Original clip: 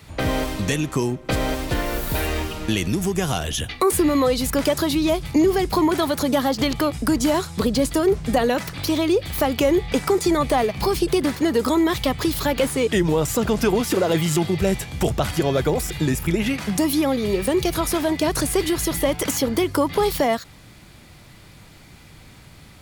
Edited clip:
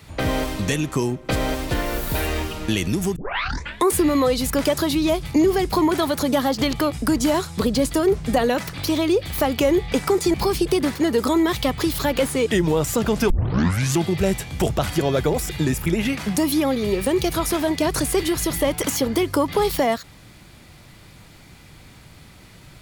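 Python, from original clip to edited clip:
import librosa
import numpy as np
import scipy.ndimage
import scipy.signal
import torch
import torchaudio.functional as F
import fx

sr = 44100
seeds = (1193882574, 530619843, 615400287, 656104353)

y = fx.edit(x, sr, fx.tape_start(start_s=3.16, length_s=0.72),
    fx.cut(start_s=10.34, length_s=0.41),
    fx.tape_start(start_s=13.71, length_s=0.69), tone=tone)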